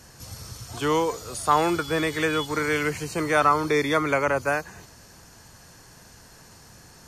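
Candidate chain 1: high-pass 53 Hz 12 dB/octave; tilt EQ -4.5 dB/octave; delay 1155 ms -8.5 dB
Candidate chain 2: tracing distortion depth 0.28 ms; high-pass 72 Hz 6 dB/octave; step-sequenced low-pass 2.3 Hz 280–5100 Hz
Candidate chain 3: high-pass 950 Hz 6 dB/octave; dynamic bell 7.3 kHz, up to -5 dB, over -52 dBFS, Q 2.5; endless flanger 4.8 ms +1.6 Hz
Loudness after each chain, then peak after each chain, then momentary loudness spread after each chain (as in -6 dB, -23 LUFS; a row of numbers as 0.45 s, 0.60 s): -20.5 LUFS, -20.0 LUFS, -30.5 LUFS; -6.0 dBFS, -1.5 dBFS, -13.0 dBFS; 12 LU, 10 LU, 17 LU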